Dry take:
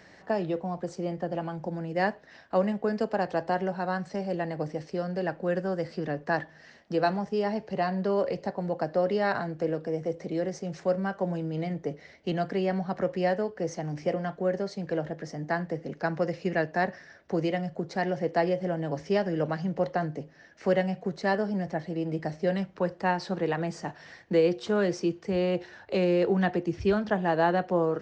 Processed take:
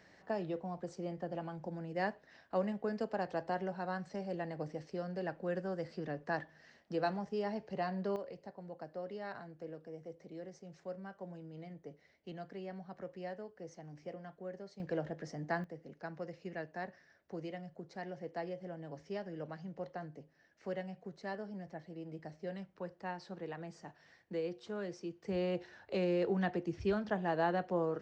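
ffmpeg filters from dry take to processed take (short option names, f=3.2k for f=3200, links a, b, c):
-af "asetnsamples=n=441:p=0,asendcmd='8.16 volume volume -17.5dB;14.8 volume volume -7dB;15.64 volume volume -15.5dB;25.23 volume volume -8.5dB',volume=-9dB"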